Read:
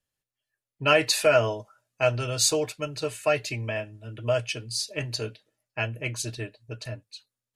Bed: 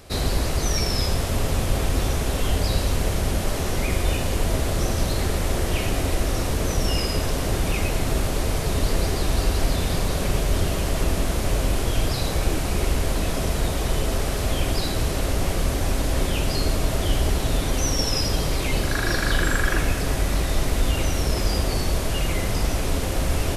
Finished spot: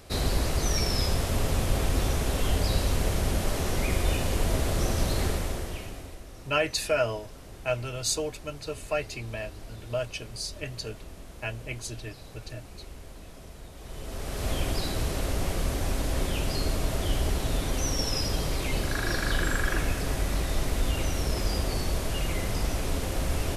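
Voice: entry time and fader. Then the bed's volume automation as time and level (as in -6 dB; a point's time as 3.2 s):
5.65 s, -5.5 dB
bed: 5.27 s -3.5 dB
6.23 s -22 dB
13.72 s -22 dB
14.48 s -5.5 dB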